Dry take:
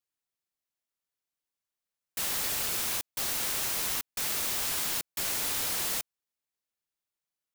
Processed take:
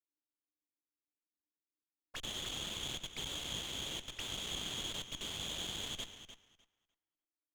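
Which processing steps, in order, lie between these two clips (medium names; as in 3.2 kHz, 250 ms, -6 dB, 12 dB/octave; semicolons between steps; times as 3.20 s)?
time reversed locally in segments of 93 ms; auto-wah 300–3300 Hz, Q 12, up, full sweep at -32 dBFS; on a send: tape echo 300 ms, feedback 34%, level -4 dB, low-pass 1.6 kHz; on the sum: sliding maximum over 5 samples; trim +8.5 dB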